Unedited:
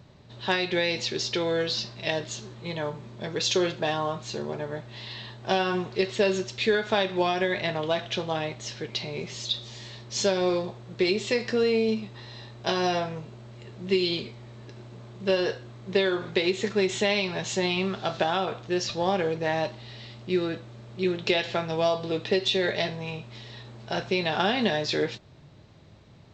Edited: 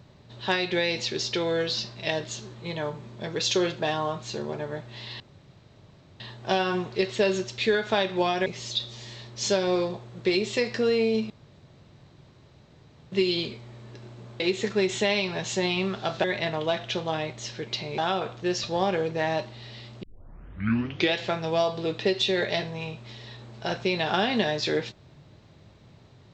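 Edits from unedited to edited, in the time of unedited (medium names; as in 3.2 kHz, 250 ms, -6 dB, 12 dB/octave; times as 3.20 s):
5.20 s: insert room tone 1.00 s
7.46–9.20 s: move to 18.24 s
12.04–13.86 s: room tone
15.14–16.40 s: delete
20.29 s: tape start 1.11 s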